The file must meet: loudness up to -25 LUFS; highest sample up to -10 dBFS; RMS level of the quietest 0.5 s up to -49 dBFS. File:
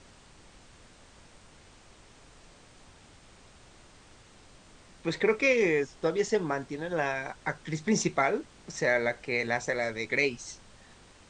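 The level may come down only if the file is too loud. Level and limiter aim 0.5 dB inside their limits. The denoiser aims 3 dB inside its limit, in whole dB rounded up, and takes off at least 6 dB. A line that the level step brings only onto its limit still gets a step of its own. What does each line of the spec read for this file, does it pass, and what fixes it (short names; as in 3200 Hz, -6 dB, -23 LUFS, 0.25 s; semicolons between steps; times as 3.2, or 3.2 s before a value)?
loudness -29.0 LUFS: OK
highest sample -12.0 dBFS: OK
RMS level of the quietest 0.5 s -55 dBFS: OK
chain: none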